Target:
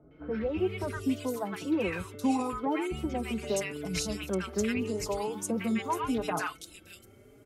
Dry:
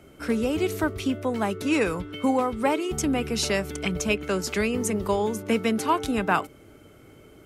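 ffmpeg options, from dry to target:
-filter_complex "[0:a]acrossover=split=1100|3400[s0][s1][s2];[s1]adelay=110[s3];[s2]adelay=580[s4];[s0][s3][s4]amix=inputs=3:normalize=0,asplit=2[s5][s6];[s6]adelay=4.3,afreqshift=0.79[s7];[s5][s7]amix=inputs=2:normalize=1,volume=0.75"

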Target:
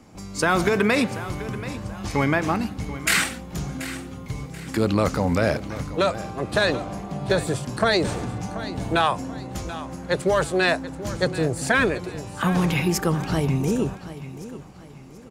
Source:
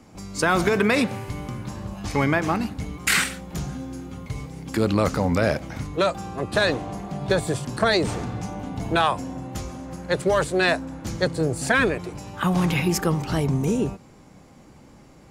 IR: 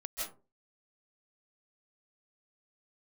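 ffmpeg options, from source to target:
-af "aecho=1:1:733|1466|2199:0.188|0.0678|0.0244"

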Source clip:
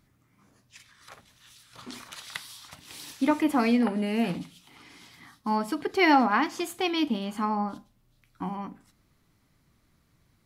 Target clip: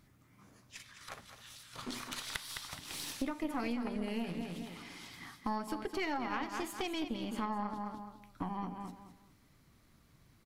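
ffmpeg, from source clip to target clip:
-af "aecho=1:1:210|420|630:0.335|0.0871|0.0226,acompressor=threshold=0.0141:ratio=5,aeval=exprs='0.0891*(cos(1*acos(clip(val(0)/0.0891,-1,1)))-cos(1*PI/2))+0.0251*(cos(2*acos(clip(val(0)/0.0891,-1,1)))-cos(2*PI/2))+0.00631*(cos(4*acos(clip(val(0)/0.0891,-1,1)))-cos(4*PI/2))+0.00891*(cos(6*acos(clip(val(0)/0.0891,-1,1)))-cos(6*PI/2))':c=same,volume=1.12"

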